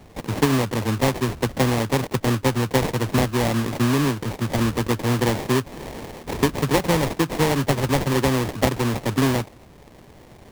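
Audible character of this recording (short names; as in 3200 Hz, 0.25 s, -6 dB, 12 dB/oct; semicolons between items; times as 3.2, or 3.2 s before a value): aliases and images of a low sample rate 1400 Hz, jitter 20%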